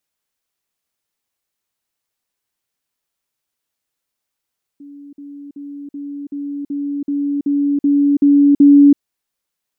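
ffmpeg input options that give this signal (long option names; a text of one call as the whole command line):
ffmpeg -f lavfi -i "aevalsrc='pow(10,(-34+3*floor(t/0.38))/20)*sin(2*PI*285*t)*clip(min(mod(t,0.38),0.33-mod(t,0.38))/0.005,0,1)':duration=4.18:sample_rate=44100" out.wav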